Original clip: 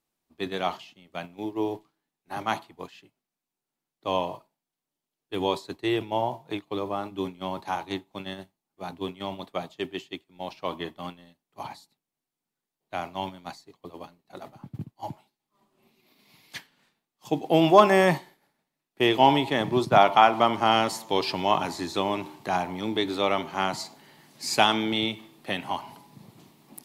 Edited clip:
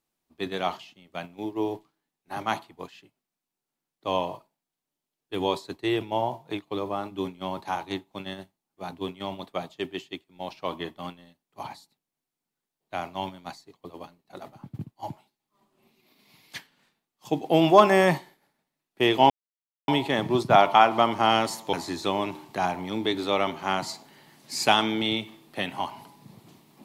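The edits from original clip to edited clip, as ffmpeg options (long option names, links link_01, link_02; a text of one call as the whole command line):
ffmpeg -i in.wav -filter_complex "[0:a]asplit=3[link_01][link_02][link_03];[link_01]atrim=end=19.3,asetpts=PTS-STARTPTS,afade=type=out:start_time=19.296:duration=0.004:curve=hsin,apad=pad_dur=0.58[link_04];[link_02]atrim=start=19.3:end=21.152,asetpts=PTS-STARTPTS,afade=type=in:duration=0.004:curve=hsin[link_05];[link_03]atrim=start=21.638[link_06];[link_04][link_05]concat=n=2:v=0:a=1[link_07];[link_07][link_06]acrossfade=duration=0.004:curve1=hsin:curve2=hsin" out.wav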